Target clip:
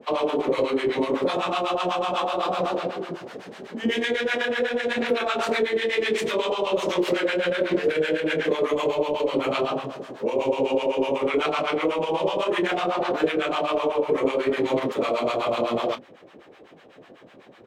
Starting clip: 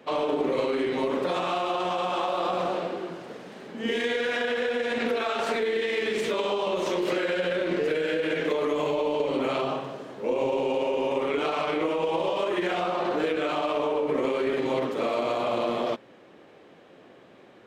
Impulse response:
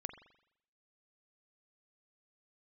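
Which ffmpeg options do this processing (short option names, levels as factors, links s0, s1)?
-filter_complex "[0:a]bandreject=f=50:t=h:w=6,bandreject=f=100:t=h:w=6,bandreject=f=150:t=h:w=6,bandreject=f=200:t=h:w=6,bandreject=f=250:t=h:w=6,bandreject=f=300:t=h:w=6,acrossover=split=750[s0][s1];[s0]aeval=exprs='val(0)*(1-1/2+1/2*cos(2*PI*8*n/s))':c=same[s2];[s1]aeval=exprs='val(0)*(1-1/2-1/2*cos(2*PI*8*n/s))':c=same[s3];[s2][s3]amix=inputs=2:normalize=0,asplit=2[s4][s5];[s5]adelay=26,volume=0.237[s6];[s4][s6]amix=inputs=2:normalize=0,volume=2.37"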